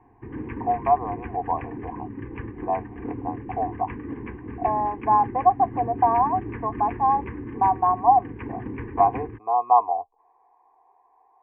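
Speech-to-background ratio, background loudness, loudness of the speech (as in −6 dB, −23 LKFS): 12.0 dB, −35.5 LKFS, −23.5 LKFS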